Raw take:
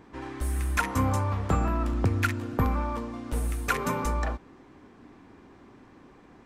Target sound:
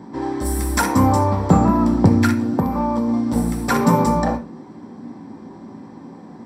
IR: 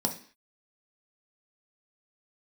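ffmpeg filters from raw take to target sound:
-filter_complex "[0:a]asettb=1/sr,asplit=3[s0][s1][s2];[s0]atrim=end=0.454[s3];[s1]atrim=start=0.45:end=0.89,asetpts=PTS-STARTPTS,afade=t=in:d=0.004:c=qsin,afade=t=out:st=0.436:d=0.004:c=qsin,highshelf=f=6100:g=10.5[s4];[s2]atrim=start=0.886[s5];[s3][s4]acrossfade=d=0.004:c1=hsin:c2=qsin[s6];[s6][s5]acrossfade=d=0.004:c1=qsin:c2=hsin[s7];[1:a]atrim=start_sample=2205,afade=t=out:st=0.19:d=0.01,atrim=end_sample=8820[s8];[s7][s8]afir=irnorm=-1:irlink=0,asplit=3[s9][s10][s11];[s9]afade=t=out:st=2.33:d=0.02[s12];[s10]acompressor=threshold=0.126:ratio=6,afade=t=in:st=2.33:d=0.02,afade=t=out:st=3.07:d=0.02[s13];[s11]afade=t=in:st=3.07:d=0.02[s14];[s12][s13][s14]amix=inputs=3:normalize=0,volume=1.26"

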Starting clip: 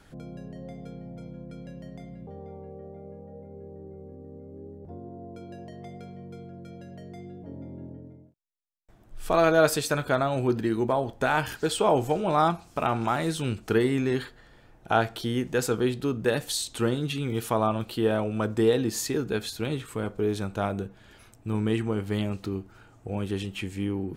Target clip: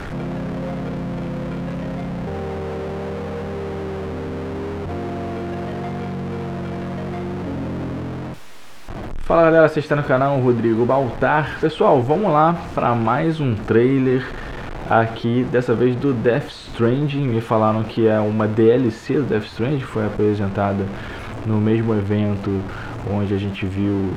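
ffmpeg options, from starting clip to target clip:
-filter_complex "[0:a]aeval=exprs='val(0)+0.5*0.0299*sgn(val(0))':c=same,aemphasis=mode=reproduction:type=75fm,acrossover=split=3200[s0][s1];[s1]acompressor=threshold=0.002:ratio=4:attack=1:release=60[s2];[s0][s2]amix=inputs=2:normalize=0,volume=2.11"

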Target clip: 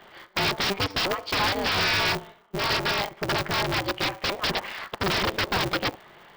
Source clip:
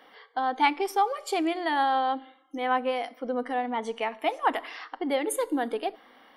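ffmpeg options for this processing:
-af "aresample=11025,aeval=exprs='(mod(16.8*val(0)+1,2)-1)/16.8':c=same,aresample=44100,aeval=exprs='val(0)*sgn(sin(2*PI*100*n/s))':c=same,volume=1.78"

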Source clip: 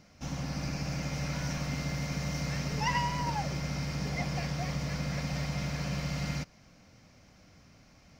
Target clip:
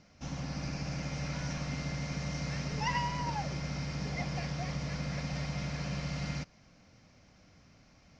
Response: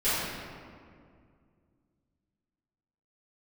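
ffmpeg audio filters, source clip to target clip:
-af "lowpass=f=6900:w=0.5412,lowpass=f=6900:w=1.3066,volume=0.75"

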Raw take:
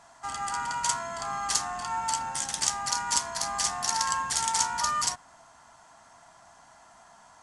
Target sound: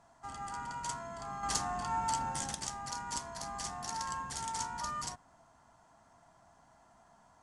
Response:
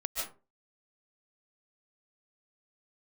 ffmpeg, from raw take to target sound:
-filter_complex "[0:a]tiltshelf=f=720:g=6.5,asettb=1/sr,asplit=3[s0][s1][s2];[s0]atrim=end=1.434[s3];[s1]atrim=start=1.43:end=2.55,asetpts=PTS-STARTPTS,afade=t=in:d=0.004:c=qsin,afade=t=out:st=1.116:d=0.004:c=qsin,acontrast=51[s4];[s2]atrim=start=2.546[s5];[s3][s4]acrossfade=d=0.004:c1=hsin:c2=qsin[s6];[s6][s5]acrossfade=d=0.004:c1=qsin:c2=hsin,volume=0.422"

